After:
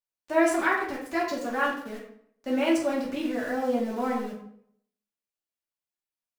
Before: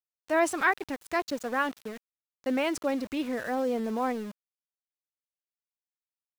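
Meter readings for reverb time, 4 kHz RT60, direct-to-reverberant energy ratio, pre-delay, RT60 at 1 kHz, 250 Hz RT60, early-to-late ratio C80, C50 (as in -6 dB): 0.65 s, 0.45 s, -6.5 dB, 3 ms, 0.65 s, 0.70 s, 8.0 dB, 4.5 dB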